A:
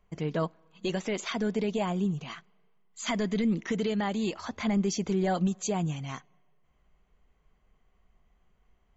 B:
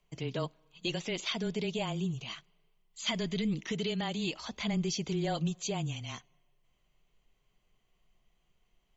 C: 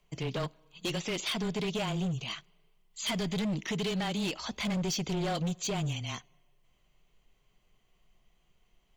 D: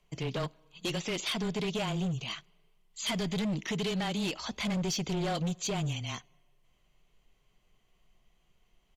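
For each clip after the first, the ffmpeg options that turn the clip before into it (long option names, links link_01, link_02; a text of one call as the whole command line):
ffmpeg -i in.wav -filter_complex "[0:a]afreqshift=-17,highshelf=frequency=2200:width_type=q:width=1.5:gain=7.5,acrossover=split=5900[link_01][link_02];[link_02]acompressor=threshold=-50dB:ratio=4:attack=1:release=60[link_03];[link_01][link_03]amix=inputs=2:normalize=0,volume=-5dB" out.wav
ffmpeg -i in.wav -af "volume=32.5dB,asoftclip=hard,volume=-32.5dB,volume=4dB" out.wav
ffmpeg -i in.wav -af "aresample=32000,aresample=44100" out.wav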